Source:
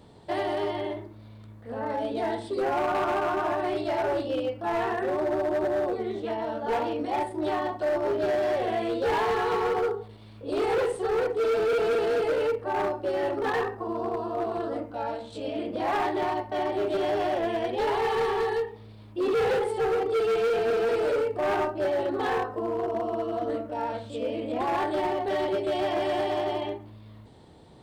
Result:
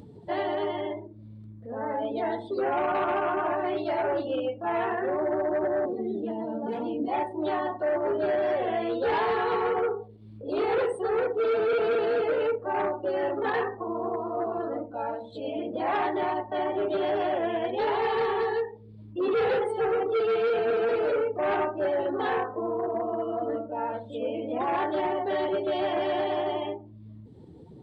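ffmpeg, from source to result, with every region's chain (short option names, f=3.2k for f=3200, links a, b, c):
-filter_complex "[0:a]asettb=1/sr,asplit=3[a][b][c];[a]atrim=end=5.854[d];[b]atrim=start=5.85:end=7.08,asetpts=PTS-STARTPTS,afade=t=in:d=0.004:c=qsin,afade=t=out:st=1.226:d=0.004:c=qsin,highpass=f=150:w=0.5412,highpass=f=150:w=1.3066,equalizer=f=250:w=0.35:g=12.5,acrossover=split=210|3000[e][f][g];[f]acompressor=threshold=-31dB:ratio=10:attack=3.2:release=140:knee=2.83:detection=peak[h];[e][h][g]amix=inputs=3:normalize=0[i];[c]atrim=start=7.076[j];[d][i]acrossfade=d=0.004:c1=hsin:c2=qsin[k];[k][j]acrossfade=d=0.004:c1=qsin:c2=hsin,afftdn=nr=22:nf=-44,highpass=f=130:p=1,acompressor=mode=upward:threshold=-37dB:ratio=2.5"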